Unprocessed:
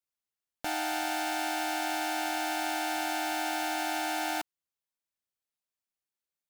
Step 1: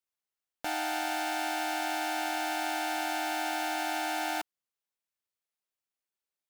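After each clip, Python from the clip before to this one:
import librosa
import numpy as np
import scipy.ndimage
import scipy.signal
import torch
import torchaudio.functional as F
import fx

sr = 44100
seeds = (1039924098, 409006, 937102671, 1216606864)

y = fx.bass_treble(x, sr, bass_db=-5, treble_db=-2)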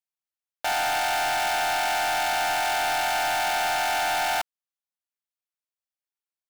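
y = scipy.signal.sosfilt(scipy.signal.butter(4, 550.0, 'highpass', fs=sr, output='sos'), x)
y = fx.leveller(y, sr, passes=3)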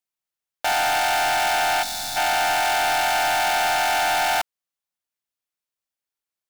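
y = fx.spec_box(x, sr, start_s=1.83, length_s=0.34, low_hz=280.0, high_hz=3400.0, gain_db=-13)
y = F.gain(torch.from_numpy(y), 4.0).numpy()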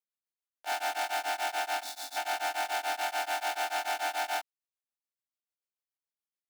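y = scipy.signal.sosfilt(scipy.signal.ellip(4, 1.0, 60, 270.0, 'highpass', fs=sr, output='sos'), x)
y = y * np.abs(np.cos(np.pi * 6.9 * np.arange(len(y)) / sr))
y = F.gain(torch.from_numpy(y), -8.5).numpy()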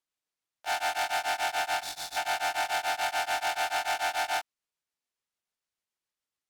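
y = fx.low_shelf(x, sr, hz=410.0, db=-8.5)
y = np.interp(np.arange(len(y)), np.arange(len(y))[::2], y[::2])
y = F.gain(torch.from_numpy(y), 4.0).numpy()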